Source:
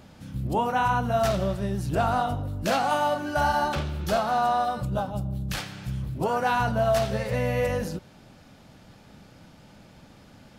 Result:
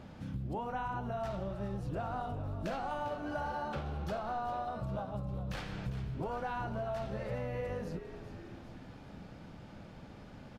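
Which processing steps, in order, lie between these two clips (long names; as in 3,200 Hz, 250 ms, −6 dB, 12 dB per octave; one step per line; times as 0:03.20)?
low-pass filter 2,100 Hz 6 dB per octave
downward compressor 6 to 1, threshold −36 dBFS, peak gain reduction 15.5 dB
on a send: echo with shifted repeats 401 ms, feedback 63%, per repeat −78 Hz, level −11.5 dB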